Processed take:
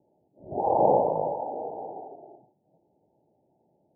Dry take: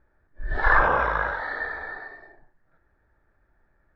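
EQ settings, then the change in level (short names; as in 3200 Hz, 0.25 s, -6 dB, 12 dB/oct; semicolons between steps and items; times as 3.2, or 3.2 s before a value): HPF 140 Hz 24 dB/oct; steep low-pass 860 Hz 96 dB/oct; +6.0 dB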